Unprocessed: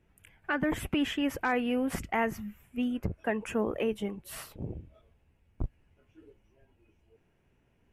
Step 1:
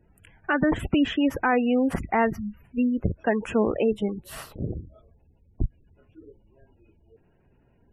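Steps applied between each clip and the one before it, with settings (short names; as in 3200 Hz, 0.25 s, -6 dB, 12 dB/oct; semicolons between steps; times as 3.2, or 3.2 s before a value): high shelf 3600 Hz -7.5 dB; spectral gate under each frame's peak -25 dB strong; bell 2200 Hz -5.5 dB 0.24 oct; gain +7.5 dB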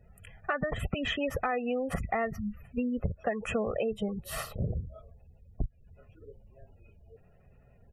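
comb 1.6 ms, depth 80%; compressor 10:1, threshold -27 dBFS, peak gain reduction 14 dB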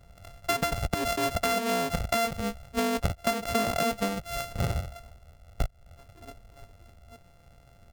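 sample sorter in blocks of 64 samples; gain +3.5 dB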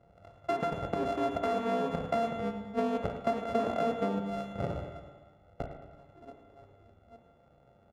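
band-pass 450 Hz, Q 0.75; on a send: feedback echo 0.11 s, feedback 55%, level -13 dB; on the sum: spring tank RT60 1.2 s, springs 30/48 ms, chirp 60 ms, DRR 5 dB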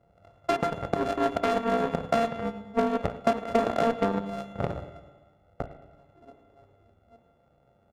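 added harmonics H 7 -21 dB, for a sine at -16 dBFS; gain +6.5 dB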